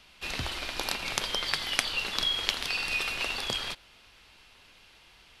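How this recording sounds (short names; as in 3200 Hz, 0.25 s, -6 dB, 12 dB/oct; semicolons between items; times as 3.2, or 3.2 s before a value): noise floor -57 dBFS; spectral tilt -2.5 dB/oct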